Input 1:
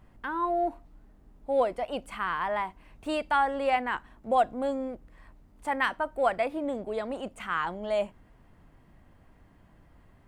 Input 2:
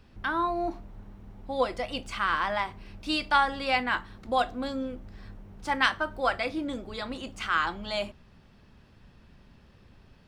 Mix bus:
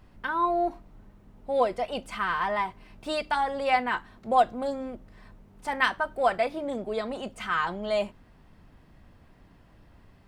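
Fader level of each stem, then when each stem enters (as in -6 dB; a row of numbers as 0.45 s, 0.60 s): +1.0 dB, -6.0 dB; 0.00 s, 0.00 s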